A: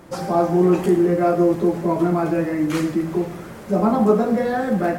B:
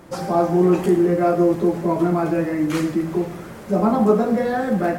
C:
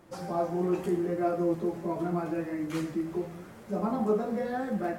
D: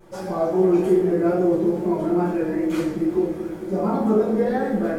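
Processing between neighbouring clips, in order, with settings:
no processing that can be heard
flanger 0.82 Hz, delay 8.2 ms, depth 7.5 ms, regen +53%; level −7.5 dB
tape wow and flutter 81 cents; delay with a low-pass on its return 221 ms, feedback 75%, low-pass 580 Hz, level −10 dB; rectangular room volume 38 cubic metres, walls mixed, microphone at 1.1 metres

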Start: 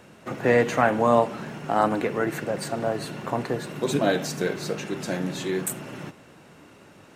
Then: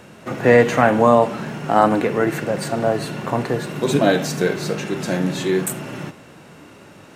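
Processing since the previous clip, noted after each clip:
harmonic and percussive parts rebalanced harmonic +5 dB
boost into a limiter +4.5 dB
level −1 dB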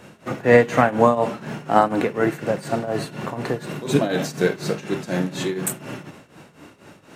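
shaped tremolo triangle 4.1 Hz, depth 85%
level +1 dB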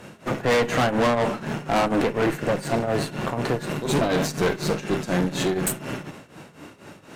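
tube saturation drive 23 dB, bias 0.7
level +6 dB

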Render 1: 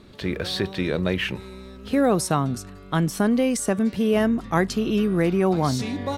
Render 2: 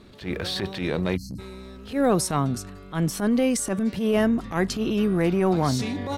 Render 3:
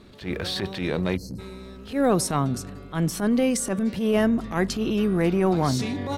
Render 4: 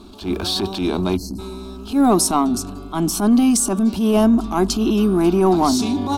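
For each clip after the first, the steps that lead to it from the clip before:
time-frequency box erased 0:01.17–0:01.39, 310–4,100 Hz; transient designer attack −11 dB, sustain +1 dB
delay with a low-pass on its return 83 ms, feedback 82%, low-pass 520 Hz, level −22.5 dB
phaser with its sweep stopped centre 510 Hz, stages 6; in parallel at −10 dB: soft clipping −29.5 dBFS, distortion −8 dB; on the sum: level +8.5 dB

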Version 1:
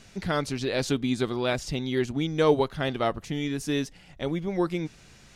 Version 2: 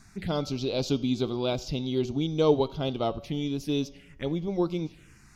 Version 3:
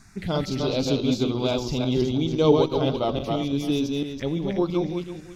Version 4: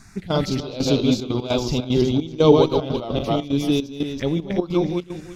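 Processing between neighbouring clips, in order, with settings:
phaser swept by the level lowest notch 490 Hz, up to 1,800 Hz, full sweep at −26.5 dBFS; hum removal 189 Hz, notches 36; tape delay 84 ms, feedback 61%, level −24 dB
feedback delay that plays each chunk backwards 168 ms, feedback 43%, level −2.5 dB; level +2.5 dB
gate pattern "xx.xxx..xxxx.x.x" 150 BPM −12 dB; level +4.5 dB

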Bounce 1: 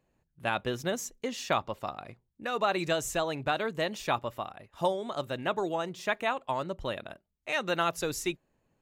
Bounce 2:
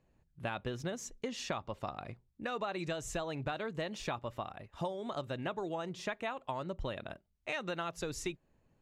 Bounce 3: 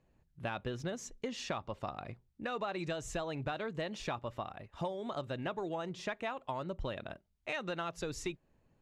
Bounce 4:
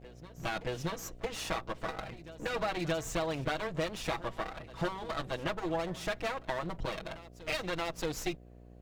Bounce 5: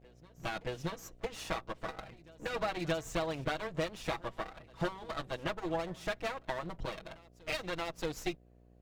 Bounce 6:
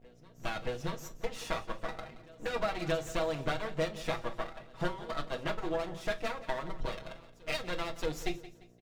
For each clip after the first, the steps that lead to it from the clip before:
Bessel low-pass filter 7,400 Hz, order 2; low-shelf EQ 150 Hz +7.5 dB; downward compressor, threshold −33 dBFS, peak gain reduction 11 dB; level −1 dB
high-shelf EQ 11,000 Hz −11 dB; in parallel at −8 dB: soft clipping −31 dBFS, distortion −15 dB; on the sum: level −2.5 dB
lower of the sound and its delayed copy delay 6.2 ms; hum with harmonics 60 Hz, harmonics 12, −59 dBFS −5 dB per octave; backwards echo 626 ms −17 dB; level +5.5 dB
expander for the loud parts 1.5 to 1, over −45 dBFS
repeating echo 174 ms, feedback 37%, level −16 dB; on a send at −6 dB: convolution reverb RT60 0.25 s, pre-delay 3 ms

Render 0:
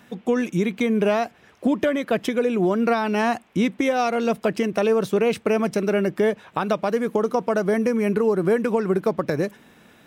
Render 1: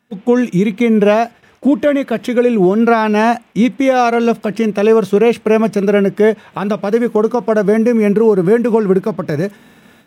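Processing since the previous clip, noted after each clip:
noise gate with hold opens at −42 dBFS
harmonic and percussive parts rebalanced harmonic +8 dB
level +1.5 dB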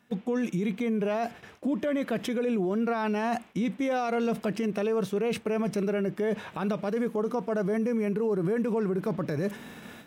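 reversed playback
downward compressor 6 to 1, threshold −19 dBFS, peak gain reduction 12 dB
reversed playback
brickwall limiter −21 dBFS, peak gain reduction 10 dB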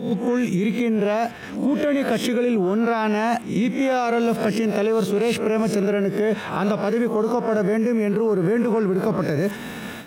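peak hold with a rise ahead of every peak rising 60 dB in 0.45 s
in parallel at +1 dB: downward compressor, threshold −35 dBFS, peak gain reduction 11 dB
on the sum: level +4 dB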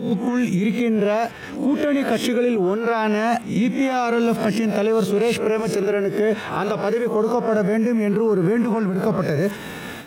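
flanger 0.24 Hz, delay 0.7 ms, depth 2.2 ms, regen −66%
level +5.5 dB

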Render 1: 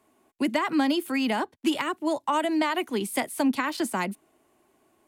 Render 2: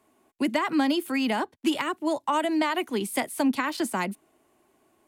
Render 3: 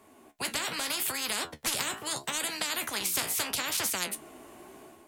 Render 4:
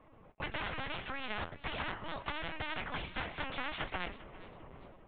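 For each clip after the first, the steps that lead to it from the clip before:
no processing that can be heard
automatic gain control gain up to 8 dB; flanger 0.77 Hz, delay 9.5 ms, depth 8.7 ms, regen +51%; every bin compressed towards the loudest bin 10 to 1; level −4 dB
low-pass filter 2,500 Hz 12 dB per octave; linear-prediction vocoder at 8 kHz pitch kept; feedback echo with a swinging delay time 401 ms, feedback 33%, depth 84 cents, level −18 dB; level −2 dB

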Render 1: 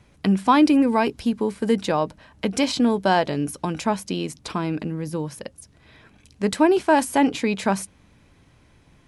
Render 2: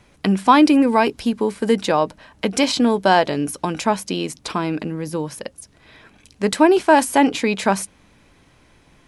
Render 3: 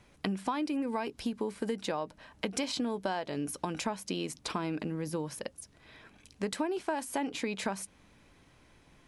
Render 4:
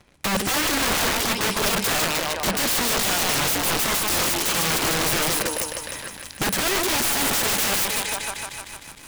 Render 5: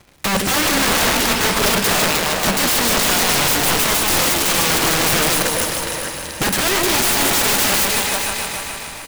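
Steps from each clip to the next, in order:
parametric band 93 Hz −7 dB 2.4 octaves; level +5 dB
downward compressor 10 to 1, threshold −22 dBFS, peak gain reduction 15.5 dB; level −7.5 dB
feedback echo with a high-pass in the loop 153 ms, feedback 80%, high-pass 460 Hz, level −6 dB; leveller curve on the samples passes 3; wrap-around overflow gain 24 dB; level +7 dB
surface crackle 340 per second −45 dBFS; repeating echo 417 ms, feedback 36%, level −8.5 dB; convolution reverb RT60 3.6 s, pre-delay 18 ms, DRR 7 dB; level +4.5 dB

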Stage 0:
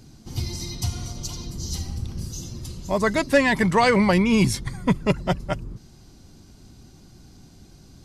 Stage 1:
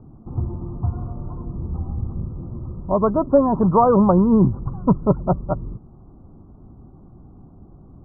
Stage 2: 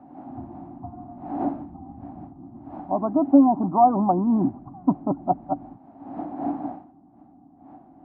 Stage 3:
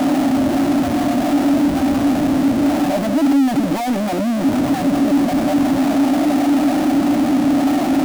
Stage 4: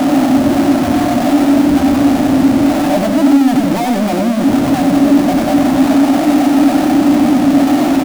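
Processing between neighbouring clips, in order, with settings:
Butterworth low-pass 1,300 Hz 96 dB per octave; level +4 dB
wind on the microphone 540 Hz −34 dBFS; dynamic equaliser 410 Hz, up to +6 dB, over −29 dBFS, Q 1.1; pair of resonant band-passes 460 Hz, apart 1.4 octaves; level +3.5 dB
sign of each sample alone; hollow resonant body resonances 280/580 Hz, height 14 dB, ringing for 40 ms
single-tap delay 93 ms −5.5 dB; level +4 dB

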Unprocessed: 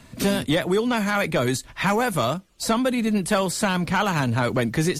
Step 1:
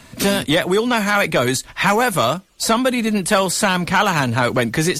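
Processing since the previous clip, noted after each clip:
low-shelf EQ 430 Hz −6 dB
level +7.5 dB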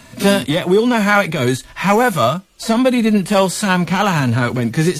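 harmonic and percussive parts rebalanced percussive −16 dB
level +5.5 dB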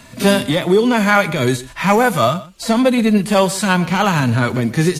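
single-tap delay 125 ms −18 dB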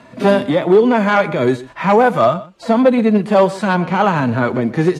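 wave folding −6.5 dBFS
resonant band-pass 540 Hz, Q 0.59
level +4 dB

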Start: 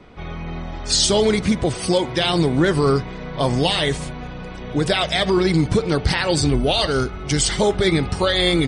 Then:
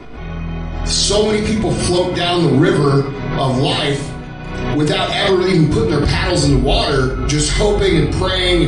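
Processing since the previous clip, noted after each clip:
rectangular room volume 910 cubic metres, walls furnished, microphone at 3.2 metres
background raised ahead of every attack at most 38 dB per second
level −1.5 dB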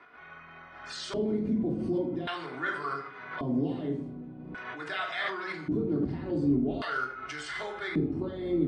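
auto-filter band-pass square 0.44 Hz 260–1,500 Hz
level −7.5 dB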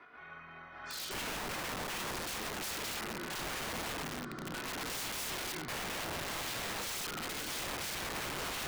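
feedback delay with all-pass diffusion 1,324 ms, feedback 52%, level −10 dB
wrap-around overflow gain 32.5 dB
level −1.5 dB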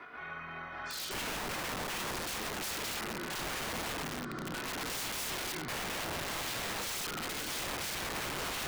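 brickwall limiter −40 dBFS, peak gain reduction 6 dB
level +7.5 dB

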